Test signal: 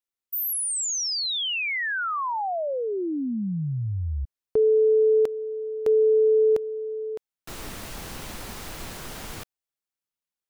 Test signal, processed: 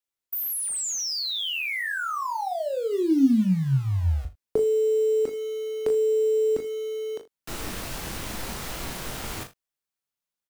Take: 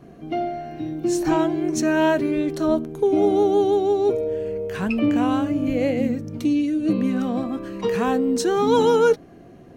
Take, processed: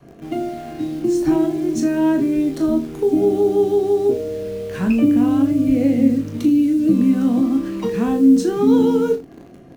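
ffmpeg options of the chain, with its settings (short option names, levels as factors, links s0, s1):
-filter_complex "[0:a]adynamicequalizer=threshold=0.0158:dfrequency=270:dqfactor=2.2:tfrequency=270:tqfactor=2.2:attack=5:release=100:ratio=0.4:range=3.5:mode=boostabove:tftype=bell,acrossover=split=350[s0][s1];[s1]acompressor=threshold=0.0178:ratio=2.5:attack=29:release=252:knee=2.83:detection=peak[s2];[s0][s2]amix=inputs=2:normalize=0,asplit=2[s3][s4];[s4]acrusher=bits=5:mix=0:aa=0.000001,volume=0.316[s5];[s3][s5]amix=inputs=2:normalize=0,asplit=2[s6][s7];[s7]adelay=22,volume=0.376[s8];[s6][s8]amix=inputs=2:normalize=0,aecho=1:1:37|79:0.398|0.133"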